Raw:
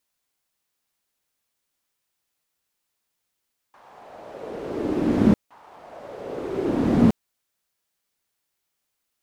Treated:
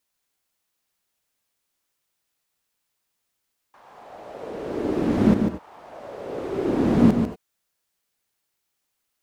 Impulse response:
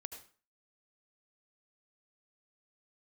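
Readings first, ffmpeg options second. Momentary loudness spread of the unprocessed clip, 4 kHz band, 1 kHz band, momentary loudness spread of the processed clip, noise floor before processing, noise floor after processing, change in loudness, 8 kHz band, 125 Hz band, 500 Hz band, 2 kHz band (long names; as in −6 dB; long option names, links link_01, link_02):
20 LU, +1.0 dB, +1.0 dB, 21 LU, −79 dBFS, −78 dBFS, +0.5 dB, can't be measured, +1.0 dB, +1.0 dB, +1.0 dB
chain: -filter_complex "[0:a]asplit=2[link_01][link_02];[1:a]atrim=start_sample=2205,afade=type=out:start_time=0.15:duration=0.01,atrim=end_sample=7056,adelay=146[link_03];[link_02][link_03]afir=irnorm=-1:irlink=0,volume=-1.5dB[link_04];[link_01][link_04]amix=inputs=2:normalize=0"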